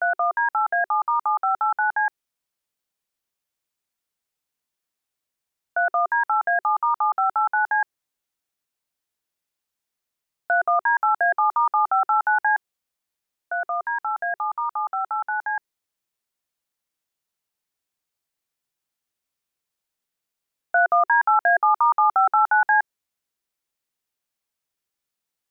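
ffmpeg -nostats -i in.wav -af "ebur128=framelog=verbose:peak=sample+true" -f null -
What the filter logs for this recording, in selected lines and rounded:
Integrated loudness:
  I:         -21.3 LUFS
  Threshold: -31.4 LUFS
Loudness range:
  LRA:        10.8 LU
  Threshold: -43.9 LUFS
  LRA low:   -30.5 LUFS
  LRA high:  -19.7 LUFS
Sample peak:
  Peak:      -10.6 dBFS
True peak:
  Peak:      -10.6 dBFS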